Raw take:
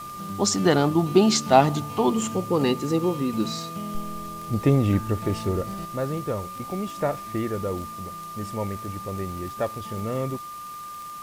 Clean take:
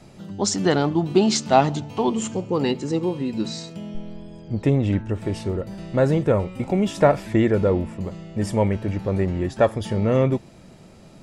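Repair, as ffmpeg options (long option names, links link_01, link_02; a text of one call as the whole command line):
ffmpeg -i in.wav -af "adeclick=threshold=4,bandreject=frequency=1200:width=30,afwtdn=0.0045,asetnsamples=nb_out_samples=441:pad=0,asendcmd='5.85 volume volume 9.5dB',volume=0dB" out.wav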